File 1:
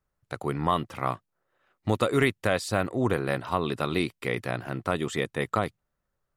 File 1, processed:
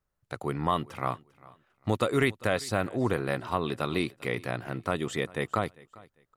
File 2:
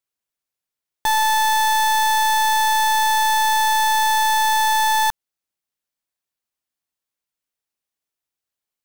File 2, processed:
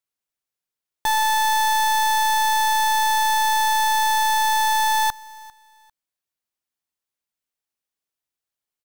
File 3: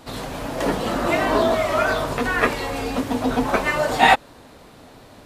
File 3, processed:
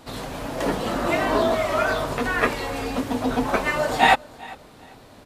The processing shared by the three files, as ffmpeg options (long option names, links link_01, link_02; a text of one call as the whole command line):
ffmpeg -i in.wav -af "aecho=1:1:398|796:0.075|0.0195,volume=-2dB" out.wav